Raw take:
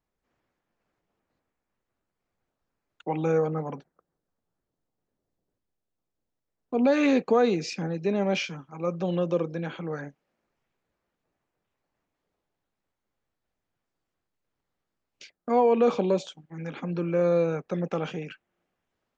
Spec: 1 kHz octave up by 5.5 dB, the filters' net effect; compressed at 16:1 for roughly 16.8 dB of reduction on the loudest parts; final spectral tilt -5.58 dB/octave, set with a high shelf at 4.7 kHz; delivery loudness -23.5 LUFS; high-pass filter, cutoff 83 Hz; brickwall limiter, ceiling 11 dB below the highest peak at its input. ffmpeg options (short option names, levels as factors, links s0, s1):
-af "highpass=83,equalizer=f=1000:t=o:g=8,highshelf=f=4700:g=-8,acompressor=threshold=0.0282:ratio=16,volume=6.68,alimiter=limit=0.2:level=0:latency=1"